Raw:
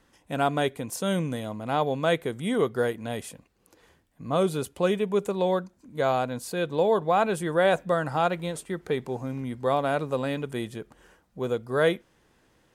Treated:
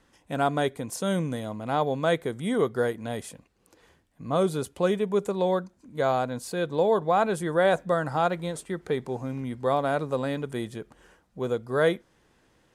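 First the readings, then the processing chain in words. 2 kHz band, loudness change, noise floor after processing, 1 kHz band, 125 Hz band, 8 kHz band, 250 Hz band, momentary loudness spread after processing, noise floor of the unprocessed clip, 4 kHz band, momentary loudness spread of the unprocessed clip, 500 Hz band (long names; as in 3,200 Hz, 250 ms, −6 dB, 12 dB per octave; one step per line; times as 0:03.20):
−1.0 dB, 0.0 dB, −65 dBFS, 0.0 dB, 0.0 dB, −0.5 dB, 0.0 dB, 11 LU, −65 dBFS, −2.0 dB, 11 LU, 0.0 dB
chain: low-pass filter 12,000 Hz 12 dB per octave
dynamic equaliser 2,700 Hz, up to −6 dB, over −51 dBFS, Q 3.1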